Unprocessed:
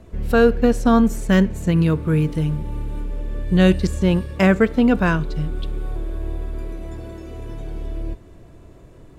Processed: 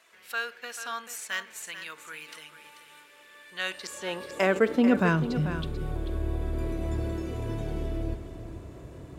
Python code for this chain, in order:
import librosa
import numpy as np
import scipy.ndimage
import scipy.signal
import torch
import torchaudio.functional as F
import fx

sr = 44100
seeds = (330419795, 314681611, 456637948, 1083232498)

p1 = fx.over_compress(x, sr, threshold_db=-27.0, ratio=-1.0)
p2 = x + (p1 * librosa.db_to_amplitude(-2.5))
p3 = fx.filter_sweep_highpass(p2, sr, from_hz=1700.0, to_hz=61.0, start_s=3.45, end_s=5.82, q=1.0)
p4 = p3 + 10.0 ** (-11.0 / 20.0) * np.pad(p3, (int(439 * sr / 1000.0), 0))[:len(p3)]
y = p4 * librosa.db_to_amplitude(-6.5)